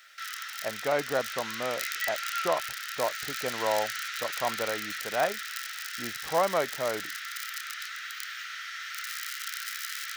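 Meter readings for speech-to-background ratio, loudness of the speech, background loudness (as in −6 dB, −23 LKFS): 2.5 dB, −32.0 LKFS, −34.5 LKFS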